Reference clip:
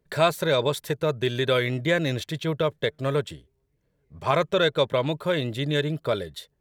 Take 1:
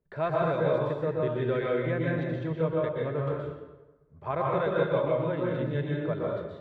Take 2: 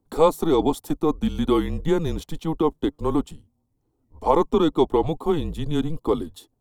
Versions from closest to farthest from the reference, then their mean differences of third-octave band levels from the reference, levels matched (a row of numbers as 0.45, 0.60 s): 2, 1; 7.5, 10.5 dB